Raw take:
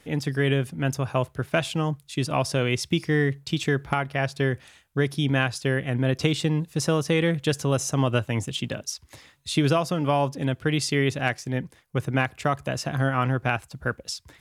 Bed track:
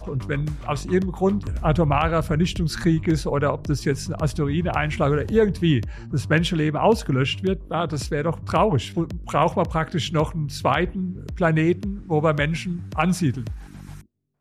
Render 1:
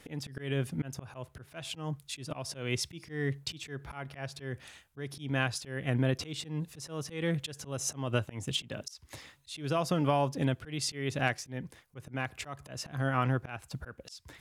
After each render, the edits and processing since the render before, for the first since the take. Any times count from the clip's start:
downward compressor 2 to 1, threshold −27 dBFS, peak gain reduction 6 dB
volume swells 241 ms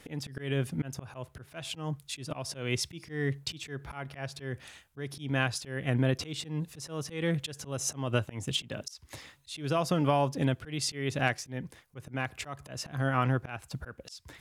level +1.5 dB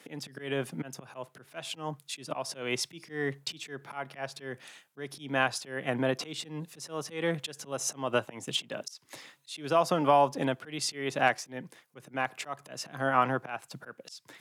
Bessel high-pass filter 230 Hz, order 8
dynamic equaliser 860 Hz, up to +7 dB, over −46 dBFS, Q 0.95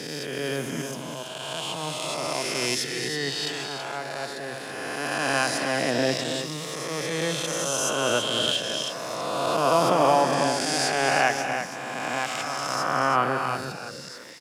peak hold with a rise ahead of every peak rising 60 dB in 2.81 s
on a send: multi-tap delay 241/328 ms −11/−7.5 dB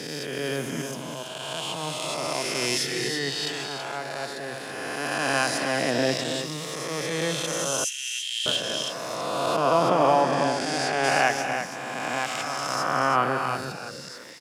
0:02.71–0:03.19: double-tracking delay 30 ms −4.5 dB
0:07.84–0:08.46: Chebyshev high-pass with heavy ripple 1,800 Hz, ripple 3 dB
0:09.56–0:11.04: low-pass filter 3,700 Hz 6 dB per octave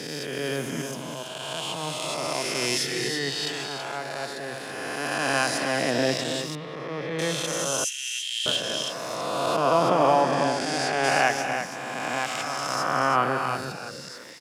0:06.55–0:07.19: high-frequency loss of the air 360 metres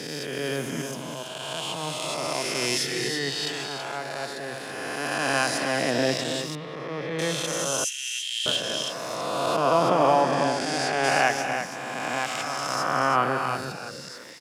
no processing that can be heard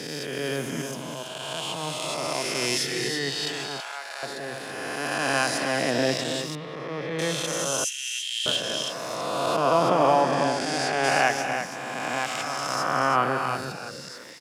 0:03.80–0:04.23: high-pass filter 1,000 Hz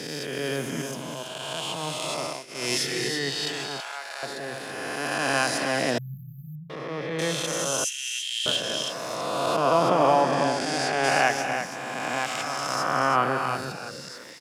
0:02.20–0:02.73: duck −20.5 dB, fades 0.26 s
0:05.98–0:06.70: linear-phase brick-wall band-stop 200–12,000 Hz

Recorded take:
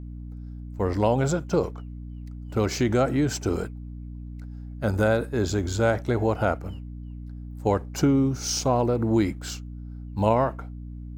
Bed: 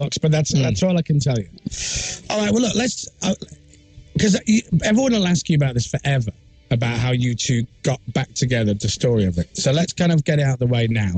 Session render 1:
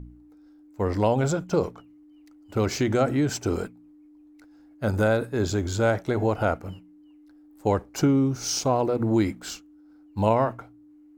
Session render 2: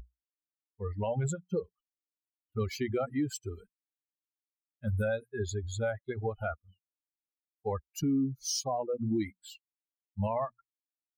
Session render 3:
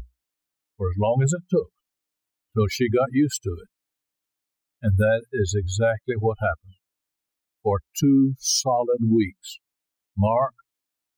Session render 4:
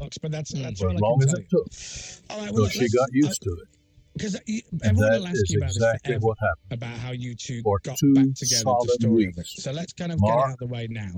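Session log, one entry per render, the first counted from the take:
hum removal 60 Hz, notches 4
spectral dynamics exaggerated over time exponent 3; brickwall limiter −23 dBFS, peak gain reduction 9.5 dB
level +11 dB
mix in bed −12.5 dB

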